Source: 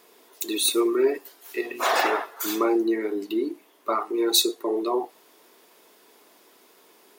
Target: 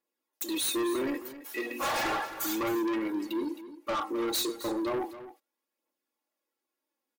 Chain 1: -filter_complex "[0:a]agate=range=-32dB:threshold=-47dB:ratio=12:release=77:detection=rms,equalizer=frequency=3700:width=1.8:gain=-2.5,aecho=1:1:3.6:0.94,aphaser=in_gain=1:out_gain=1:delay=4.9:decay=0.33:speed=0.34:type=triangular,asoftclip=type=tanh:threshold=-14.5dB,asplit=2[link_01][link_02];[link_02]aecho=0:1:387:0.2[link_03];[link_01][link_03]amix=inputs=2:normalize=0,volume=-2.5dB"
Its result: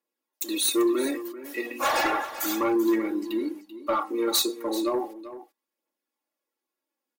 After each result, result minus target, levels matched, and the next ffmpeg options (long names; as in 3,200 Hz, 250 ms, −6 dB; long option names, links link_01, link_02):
echo 122 ms late; soft clipping: distortion −9 dB
-filter_complex "[0:a]agate=range=-32dB:threshold=-47dB:ratio=12:release=77:detection=rms,equalizer=frequency=3700:width=1.8:gain=-2.5,aecho=1:1:3.6:0.94,aphaser=in_gain=1:out_gain=1:delay=4.9:decay=0.33:speed=0.34:type=triangular,asoftclip=type=tanh:threshold=-14.5dB,asplit=2[link_01][link_02];[link_02]aecho=0:1:265:0.2[link_03];[link_01][link_03]amix=inputs=2:normalize=0,volume=-2.5dB"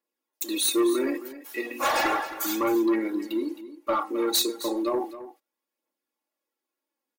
soft clipping: distortion −9 dB
-filter_complex "[0:a]agate=range=-32dB:threshold=-47dB:ratio=12:release=77:detection=rms,equalizer=frequency=3700:width=1.8:gain=-2.5,aecho=1:1:3.6:0.94,aphaser=in_gain=1:out_gain=1:delay=4.9:decay=0.33:speed=0.34:type=triangular,asoftclip=type=tanh:threshold=-25dB,asplit=2[link_01][link_02];[link_02]aecho=0:1:265:0.2[link_03];[link_01][link_03]amix=inputs=2:normalize=0,volume=-2.5dB"